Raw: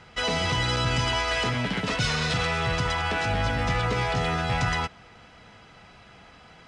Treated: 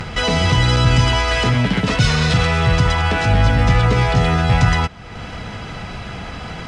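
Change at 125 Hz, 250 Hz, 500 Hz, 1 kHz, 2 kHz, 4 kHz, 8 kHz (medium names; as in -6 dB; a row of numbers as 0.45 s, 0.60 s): +13.5 dB, +11.5 dB, +8.0 dB, +7.0 dB, +7.0 dB, +6.5 dB, +6.5 dB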